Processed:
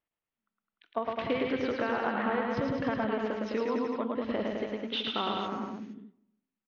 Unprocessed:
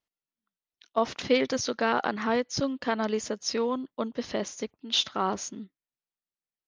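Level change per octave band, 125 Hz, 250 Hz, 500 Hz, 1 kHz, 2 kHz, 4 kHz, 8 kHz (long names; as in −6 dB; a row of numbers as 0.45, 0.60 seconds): +0.5 dB, −1.0 dB, −2.5 dB, −2.5 dB, −2.0 dB, −6.0 dB, below −25 dB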